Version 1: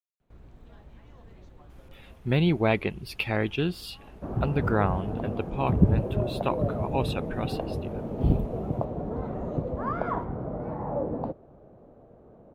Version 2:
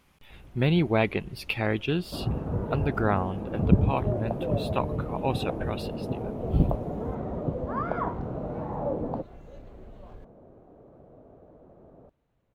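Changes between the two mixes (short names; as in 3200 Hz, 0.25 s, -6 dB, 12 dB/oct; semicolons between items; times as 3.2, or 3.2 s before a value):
speech: entry -1.70 s; second sound: entry -2.10 s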